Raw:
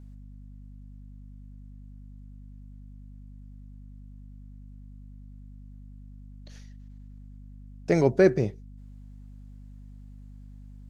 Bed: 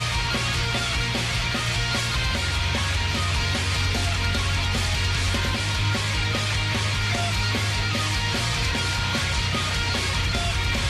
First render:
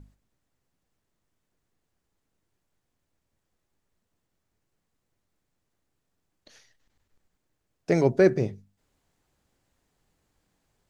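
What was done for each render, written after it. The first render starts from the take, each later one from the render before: notches 50/100/150/200/250 Hz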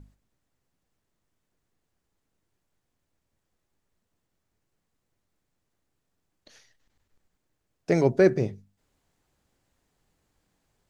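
nothing audible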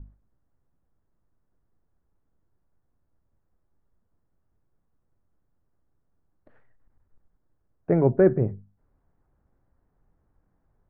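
LPF 1500 Hz 24 dB/oct; low shelf 110 Hz +10 dB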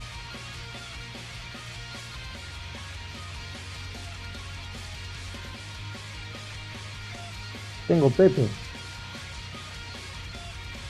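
add bed -15 dB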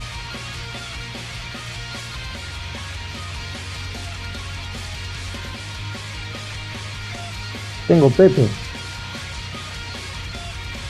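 gain +8 dB; limiter -2 dBFS, peak gain reduction 2.5 dB

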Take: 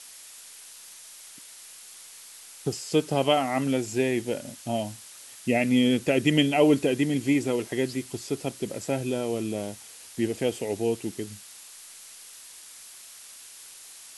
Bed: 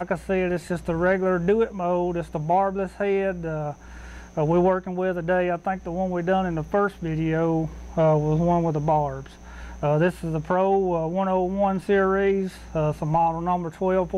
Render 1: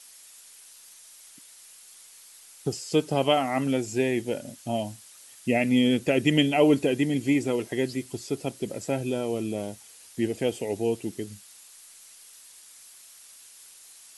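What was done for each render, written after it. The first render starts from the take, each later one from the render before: denoiser 6 dB, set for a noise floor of -47 dBFS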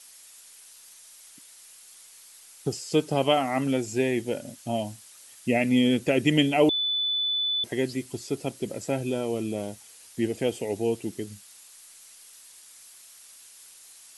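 6.69–7.64 bleep 3490 Hz -23.5 dBFS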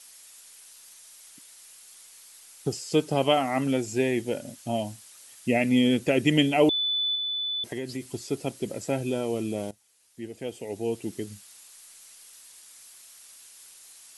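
7.15–8.13 compressor, threshold -28 dBFS; 9.71–11.15 fade in quadratic, from -16 dB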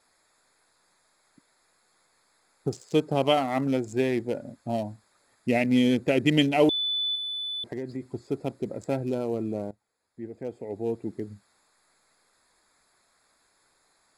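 Wiener smoothing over 15 samples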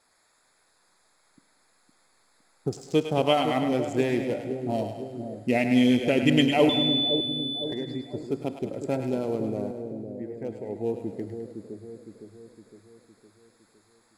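split-band echo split 600 Hz, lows 0.511 s, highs 0.104 s, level -7 dB; Schroeder reverb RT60 2 s, combs from 32 ms, DRR 14 dB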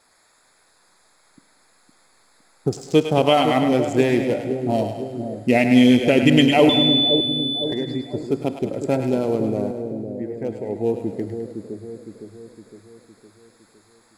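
gain +7 dB; limiter -3 dBFS, peak gain reduction 3 dB

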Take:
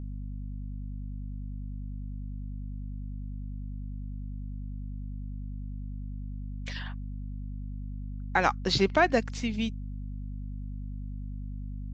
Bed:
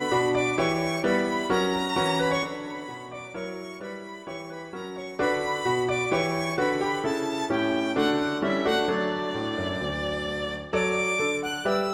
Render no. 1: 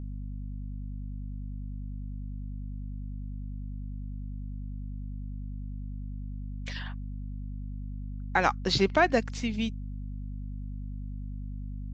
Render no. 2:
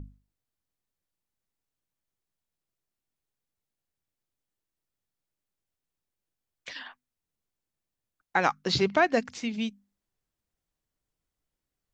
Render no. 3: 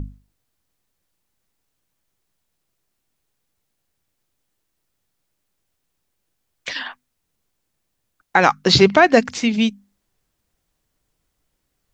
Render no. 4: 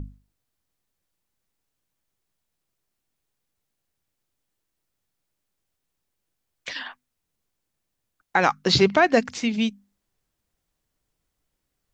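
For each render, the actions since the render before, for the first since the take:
nothing audible
notches 50/100/150/200/250 Hz
maximiser +13 dB
gain -5.5 dB

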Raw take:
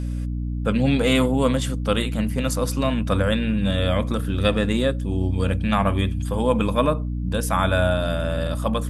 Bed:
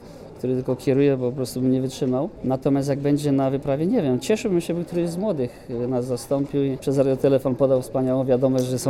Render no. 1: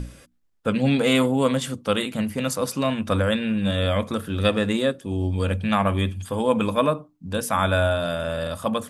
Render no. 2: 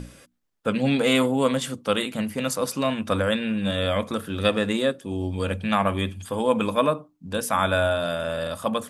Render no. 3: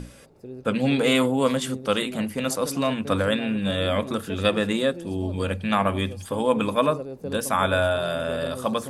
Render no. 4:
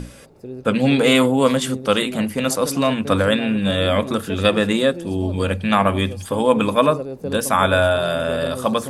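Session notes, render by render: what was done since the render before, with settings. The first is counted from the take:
notches 60/120/180/240/300 Hz
low shelf 110 Hz -10 dB
add bed -15.5 dB
gain +5.5 dB; limiter -1 dBFS, peak gain reduction 1 dB

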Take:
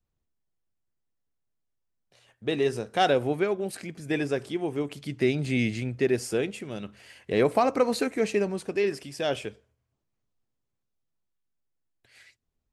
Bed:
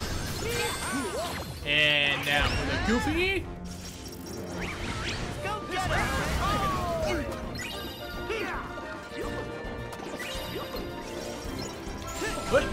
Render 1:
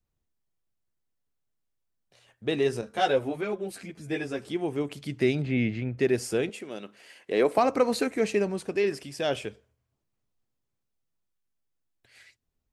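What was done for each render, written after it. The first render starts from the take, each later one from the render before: 2.81–4.48 ensemble effect; 5.42–5.98 LPF 2400 Hz; 6.49–7.58 Chebyshev high-pass 320 Hz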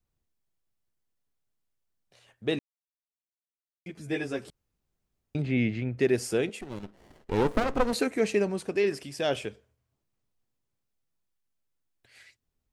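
2.59–3.86 mute; 4.5–5.35 room tone; 6.61–7.93 running maximum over 33 samples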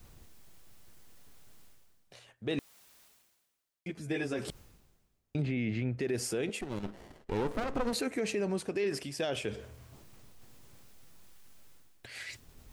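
reverse; upward compressor, threshold -32 dBFS; reverse; limiter -24 dBFS, peak gain reduction 11.5 dB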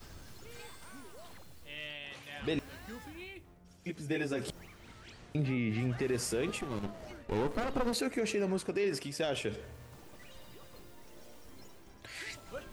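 add bed -20.5 dB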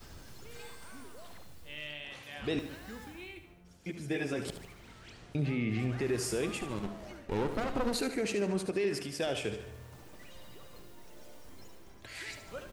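feedback echo 74 ms, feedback 49%, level -10 dB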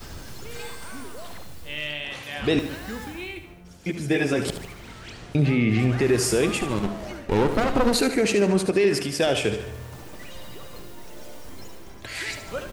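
gain +11.5 dB

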